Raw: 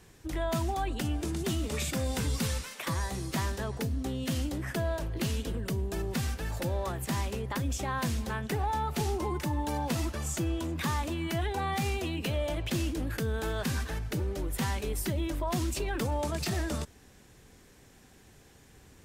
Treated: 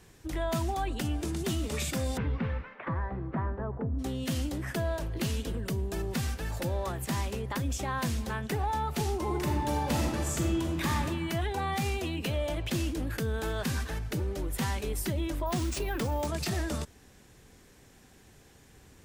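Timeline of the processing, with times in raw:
0:02.16–0:03.98: low-pass filter 2,500 Hz → 1,200 Hz 24 dB per octave
0:09.22–0:10.91: thrown reverb, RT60 1.5 s, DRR 1 dB
0:15.46–0:16.27: bad sample-rate conversion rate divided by 3×, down none, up hold

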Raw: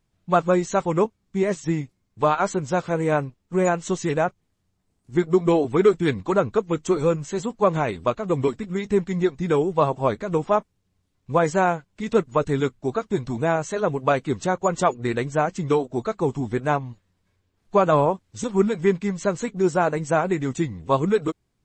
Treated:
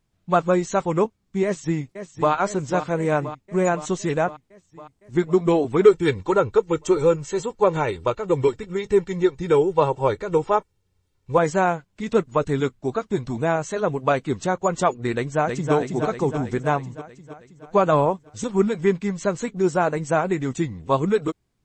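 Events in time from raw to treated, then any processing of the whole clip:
0:01.44–0:02.32: delay throw 510 ms, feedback 70%, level −10.5 dB
0:05.85–0:11.38: comb filter 2.2 ms, depth 59%
0:15.15–0:15.73: delay throw 320 ms, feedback 65%, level −4 dB

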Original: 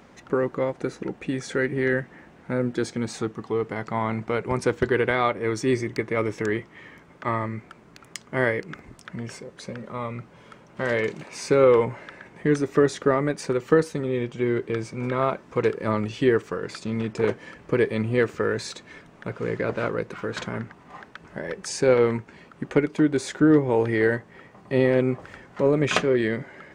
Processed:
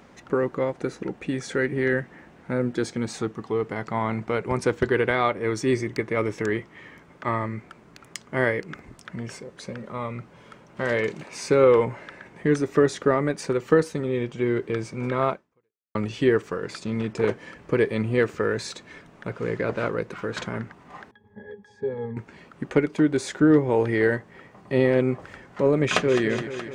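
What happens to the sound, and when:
0:15.31–0:15.95: fade out exponential
0:21.11–0:22.17: resonances in every octave G#, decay 0.12 s
0:25.84–0:26.26: delay throw 210 ms, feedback 70%, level −10.5 dB

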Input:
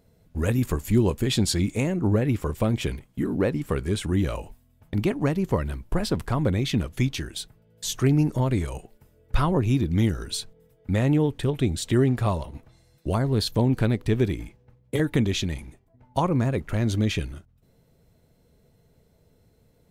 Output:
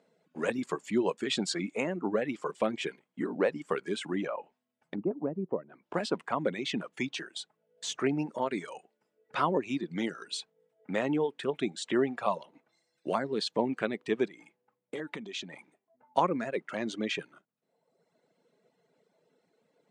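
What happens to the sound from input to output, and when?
0:04.26–0:05.94: treble cut that deepens with the level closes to 470 Hz, closed at −22 dBFS
0:14.25–0:15.54: downward compressor, threshold −28 dBFS
whole clip: elliptic band-pass filter 170–8,200 Hz, stop band 40 dB; reverb reduction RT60 1.1 s; bass and treble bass −13 dB, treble −8 dB

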